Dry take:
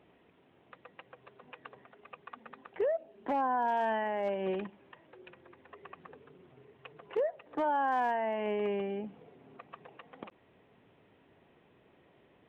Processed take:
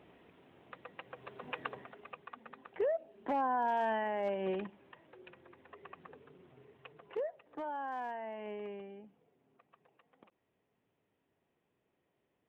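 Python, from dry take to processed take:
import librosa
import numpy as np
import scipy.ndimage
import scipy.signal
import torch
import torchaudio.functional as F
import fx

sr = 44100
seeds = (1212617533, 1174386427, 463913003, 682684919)

y = fx.gain(x, sr, db=fx.line((1.01, 3.0), (1.59, 10.0), (2.31, -2.0), (6.72, -2.0), (7.66, -10.0), (8.54, -10.0), (9.22, -16.5)))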